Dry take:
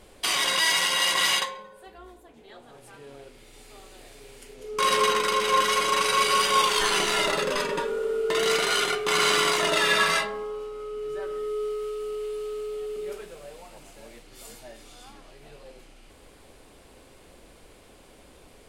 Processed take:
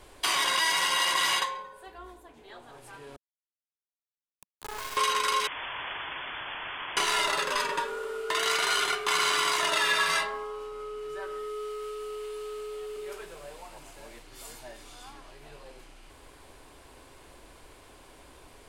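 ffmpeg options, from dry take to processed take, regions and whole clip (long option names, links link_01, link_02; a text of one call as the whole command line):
ffmpeg -i in.wav -filter_complex "[0:a]asettb=1/sr,asplit=3[link_01][link_02][link_03];[link_01]atrim=end=3.164[link_04];[link_02]atrim=start=3.16:end=4.97,asetpts=PTS-STARTPTS,afade=type=in:duration=0.004:curve=qsin,afade=type=out:start_time=1.806:duration=0.004:curve=qsin,acompressor=threshold=-34dB:ratio=8:attack=3.2:release=140:knee=1:detection=peak,acrusher=bits=3:dc=4:mix=0:aa=0.000001[link_05];[link_03]atrim=start=4.966[link_06];[link_04][link_05]acrossfade=duration=0.004:curve1=hsin:curve2=qsin[link_07];[link_07][link_06]acrossfade=duration=0.004:curve1=qsin:curve2=hsin,asettb=1/sr,asplit=3[link_08][link_09][link_10];[link_08]atrim=end=5.474[link_11];[link_09]atrim=start=5.47:end=6.97,asetpts=PTS-STARTPTS,afade=type=in:duration=0.004:curve=qsin,afade=type=out:start_time=1.496:duration=0.004:curve=qsin,aeval=exprs='(mod(21.1*val(0)+1,2)-1)/21.1':channel_layout=same,lowpass=frequency=3000:width_type=q:width=0.5098,lowpass=frequency=3000:width_type=q:width=0.6013,lowpass=frequency=3000:width_type=q:width=0.9,lowpass=frequency=3000:width_type=q:width=2.563,afreqshift=-3500[link_12];[link_10]atrim=start=6.966[link_13];[link_11][link_12]acrossfade=duration=0.004:curve1=hsin:curve2=qsin[link_14];[link_14][link_13]acrossfade=duration=0.004:curve1=qsin:curve2=hsin,equalizer=frequency=200:width_type=o:width=0.33:gain=-11,equalizer=frequency=500:width_type=o:width=0.33:gain=-4,equalizer=frequency=1000:width_type=o:width=0.33:gain=6,equalizer=frequency=1600:width_type=o:width=0.33:gain=3,acrossover=split=670|2200[link_15][link_16][link_17];[link_15]acompressor=threshold=-39dB:ratio=4[link_18];[link_16]acompressor=threshold=-28dB:ratio=4[link_19];[link_17]acompressor=threshold=-27dB:ratio=4[link_20];[link_18][link_19][link_20]amix=inputs=3:normalize=0" out.wav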